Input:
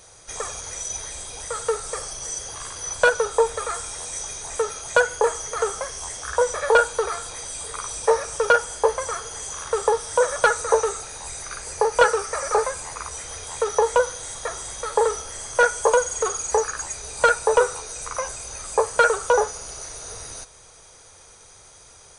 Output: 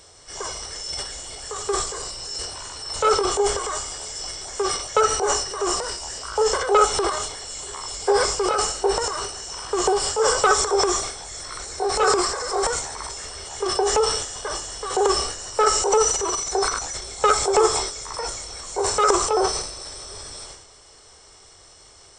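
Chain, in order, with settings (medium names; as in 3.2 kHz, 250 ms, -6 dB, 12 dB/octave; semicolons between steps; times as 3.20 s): rotating-head pitch shifter -2 st; transient shaper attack -2 dB, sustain +11 dB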